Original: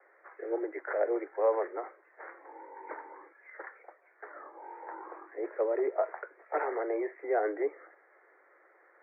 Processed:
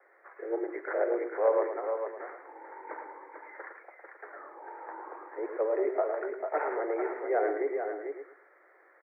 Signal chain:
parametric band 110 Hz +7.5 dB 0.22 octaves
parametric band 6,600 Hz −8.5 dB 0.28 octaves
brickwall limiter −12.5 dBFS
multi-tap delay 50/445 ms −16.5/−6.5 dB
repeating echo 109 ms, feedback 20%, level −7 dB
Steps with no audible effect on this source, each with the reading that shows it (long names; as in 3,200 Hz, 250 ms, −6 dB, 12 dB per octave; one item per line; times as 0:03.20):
parametric band 110 Hz: nothing at its input below 250 Hz
parametric band 6,600 Hz: nothing at its input above 2,200 Hz
brickwall limiter −12.5 dBFS: peak of its input −15.5 dBFS